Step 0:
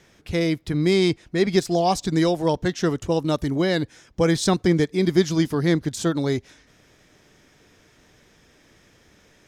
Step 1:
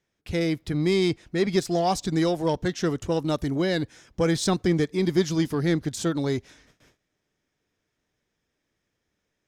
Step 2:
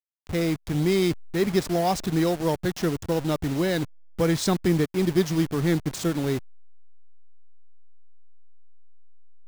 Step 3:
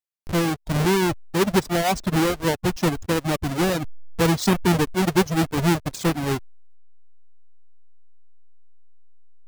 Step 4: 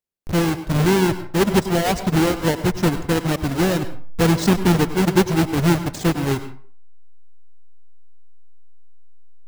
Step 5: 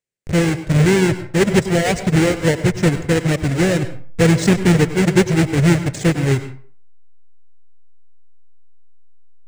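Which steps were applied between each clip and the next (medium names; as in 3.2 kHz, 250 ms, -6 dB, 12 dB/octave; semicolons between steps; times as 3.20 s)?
gate with hold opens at -43 dBFS; in parallel at -6.5 dB: saturation -22 dBFS, distortion -8 dB; on the sum: trim -5 dB
send-on-delta sampling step -31 dBFS; peaking EQ 150 Hz +2 dB
square wave that keeps the level; reverb removal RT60 1 s
in parallel at -5 dB: sample-rate reducer 1.2 kHz, jitter 0%; on the sum: reverberation RT60 0.45 s, pre-delay 92 ms, DRR 11.5 dB
ten-band graphic EQ 125 Hz +11 dB, 500 Hz +8 dB, 1 kHz -5 dB, 2 kHz +10 dB, 8 kHz +12 dB, 16 kHz -11 dB; trim -3 dB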